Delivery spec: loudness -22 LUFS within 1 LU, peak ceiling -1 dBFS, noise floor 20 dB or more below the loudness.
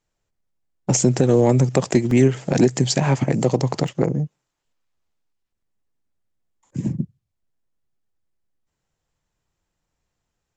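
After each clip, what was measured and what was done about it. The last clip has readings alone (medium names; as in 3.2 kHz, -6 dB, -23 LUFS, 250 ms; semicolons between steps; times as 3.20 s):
dropouts 2; longest dropout 2.5 ms; loudness -19.5 LUFS; peak level -4.0 dBFS; loudness target -22.0 LUFS
-> interpolate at 2.11/3.88 s, 2.5 ms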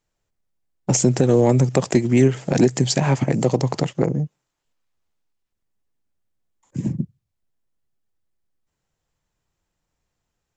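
dropouts 0; loudness -19.5 LUFS; peak level -4.0 dBFS; loudness target -22.0 LUFS
-> trim -2.5 dB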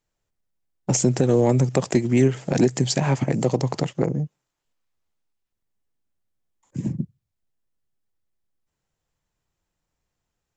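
loudness -22.0 LUFS; peak level -6.5 dBFS; noise floor -81 dBFS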